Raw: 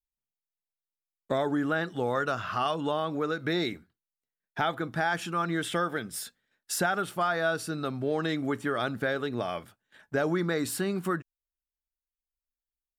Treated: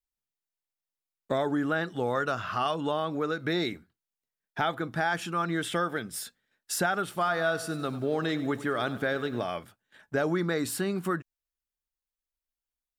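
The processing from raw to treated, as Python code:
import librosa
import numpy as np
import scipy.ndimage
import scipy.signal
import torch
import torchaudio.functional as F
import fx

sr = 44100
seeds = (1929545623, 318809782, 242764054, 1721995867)

y = fx.echo_crushed(x, sr, ms=96, feedback_pct=55, bits=9, wet_db=-14.5, at=(7.05, 9.44))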